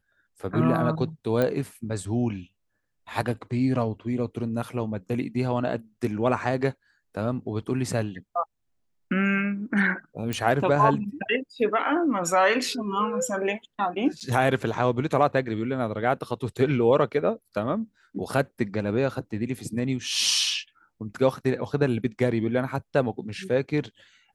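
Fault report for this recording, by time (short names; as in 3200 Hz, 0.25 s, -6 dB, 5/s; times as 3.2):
1.42 pop -13 dBFS
10.33 pop
14.2–14.21 gap 8.3 ms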